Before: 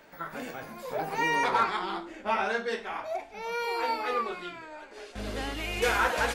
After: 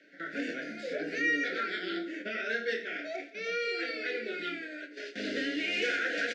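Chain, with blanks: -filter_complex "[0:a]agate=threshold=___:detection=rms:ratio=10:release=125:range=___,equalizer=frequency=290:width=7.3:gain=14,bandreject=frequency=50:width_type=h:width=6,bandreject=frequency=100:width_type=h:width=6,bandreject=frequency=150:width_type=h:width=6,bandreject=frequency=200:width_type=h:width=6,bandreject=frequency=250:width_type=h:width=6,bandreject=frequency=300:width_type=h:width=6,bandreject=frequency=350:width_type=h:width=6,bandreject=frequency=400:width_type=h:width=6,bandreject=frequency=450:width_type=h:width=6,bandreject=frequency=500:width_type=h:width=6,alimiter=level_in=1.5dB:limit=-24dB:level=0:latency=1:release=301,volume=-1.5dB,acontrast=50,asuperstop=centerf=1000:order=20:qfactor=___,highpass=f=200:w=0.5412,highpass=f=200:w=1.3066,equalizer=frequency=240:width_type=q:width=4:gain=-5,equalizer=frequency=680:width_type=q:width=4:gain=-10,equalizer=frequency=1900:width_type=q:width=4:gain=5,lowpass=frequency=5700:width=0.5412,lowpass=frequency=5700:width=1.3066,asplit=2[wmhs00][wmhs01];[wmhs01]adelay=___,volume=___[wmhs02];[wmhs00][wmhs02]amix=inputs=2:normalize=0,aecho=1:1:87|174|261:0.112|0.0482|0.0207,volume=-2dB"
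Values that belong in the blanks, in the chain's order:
-44dB, -9dB, 1.5, 27, -8dB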